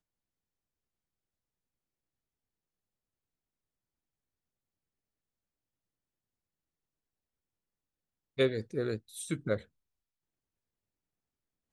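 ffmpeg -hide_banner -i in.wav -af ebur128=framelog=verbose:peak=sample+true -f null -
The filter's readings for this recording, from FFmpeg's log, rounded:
Integrated loudness:
  I:         -34.2 LUFS
  Threshold: -44.5 LUFS
Loudness range:
  LRA:         3.4 LU
  Threshold: -57.8 LUFS
  LRA low:   -40.4 LUFS
  LRA high:  -36.9 LUFS
Sample peak:
  Peak:      -15.8 dBFS
True peak:
  Peak:      -15.7 dBFS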